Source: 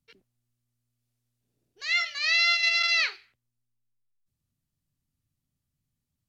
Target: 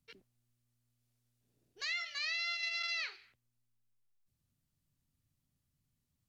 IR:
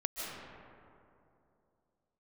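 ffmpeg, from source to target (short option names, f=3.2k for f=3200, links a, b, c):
-af "acompressor=threshold=-36dB:ratio=6"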